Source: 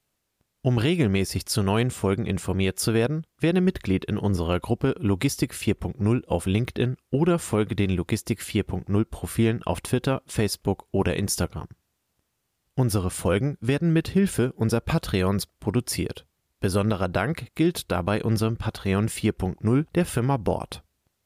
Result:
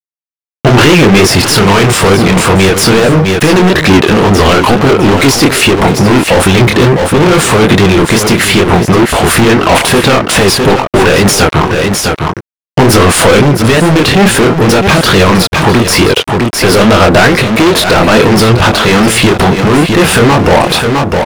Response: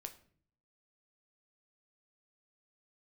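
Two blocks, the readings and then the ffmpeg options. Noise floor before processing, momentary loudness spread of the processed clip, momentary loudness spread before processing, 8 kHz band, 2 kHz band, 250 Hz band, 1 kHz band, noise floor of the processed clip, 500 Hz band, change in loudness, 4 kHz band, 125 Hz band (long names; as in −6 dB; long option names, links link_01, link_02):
−76 dBFS, 3 LU, 5 LU, +20.5 dB, +24.5 dB, +17.0 dB, +24.0 dB, below −85 dBFS, +19.5 dB, +18.5 dB, +24.0 dB, +15.0 dB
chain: -filter_complex "[0:a]asplit=2[link_01][link_02];[link_02]acompressor=threshold=-33dB:ratio=6,volume=2dB[link_03];[link_01][link_03]amix=inputs=2:normalize=0,aeval=exprs='sgn(val(0))*max(abs(val(0))-0.00944,0)':channel_layout=same,asplit=2[link_04][link_05];[link_05]highpass=frequency=720:poles=1,volume=31dB,asoftclip=type=tanh:threshold=-7.5dB[link_06];[link_04][link_06]amix=inputs=2:normalize=0,lowpass=frequency=2400:poles=1,volume=-6dB,flanger=delay=20:depth=7.7:speed=2.3,asoftclip=type=hard:threshold=-20.5dB,asplit=2[link_07][link_08];[link_08]aecho=0:1:657:0.266[link_09];[link_07][link_09]amix=inputs=2:normalize=0,alimiter=level_in=26dB:limit=-1dB:release=50:level=0:latency=1,volume=-1dB"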